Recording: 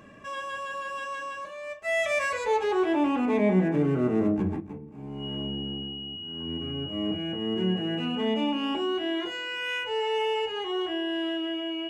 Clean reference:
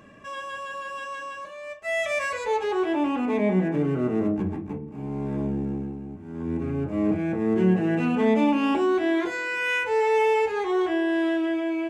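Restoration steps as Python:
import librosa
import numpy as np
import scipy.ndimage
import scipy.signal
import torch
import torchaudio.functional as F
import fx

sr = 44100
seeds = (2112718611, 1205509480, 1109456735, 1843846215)

y = fx.notch(x, sr, hz=2900.0, q=30.0)
y = fx.gain(y, sr, db=fx.steps((0.0, 0.0), (4.6, 6.5)))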